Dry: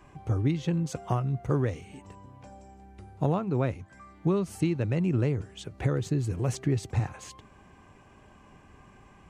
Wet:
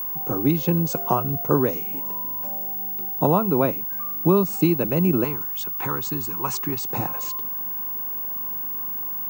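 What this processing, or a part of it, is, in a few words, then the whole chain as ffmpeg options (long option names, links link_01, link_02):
old television with a line whistle: -filter_complex "[0:a]highpass=frequency=160:width=0.5412,highpass=frequency=160:width=1.3066,equalizer=frequency=1000:width_type=q:width=4:gain=5,equalizer=frequency=1900:width_type=q:width=4:gain=-10,equalizer=frequency=3200:width_type=q:width=4:gain=-6,lowpass=frequency=8800:width=0.5412,lowpass=frequency=8800:width=1.3066,aeval=exprs='val(0)+0.0178*sin(2*PI*15625*n/s)':channel_layout=same,highpass=120,asettb=1/sr,asplit=3[link_01][link_02][link_03];[link_01]atrim=end=5.244[link_04];[link_02]atrim=start=5.24:end=6.9,asetpts=PTS-STARTPTS,afade=type=in:duration=0.004:curve=qsin,afade=type=out:start_time=1.656:duration=0.004:curve=qsin,lowshelf=frequency=760:width_type=q:width=3:gain=-7.5[link_05];[link_03]atrim=start=6.896[link_06];[link_04][link_05]acrossfade=duration=0.004:curve1=hsin:curve2=qsin[link_07];[link_07][link_06]acrossfade=duration=0.004:curve1=qsin:curve2=hsin,volume=9dB"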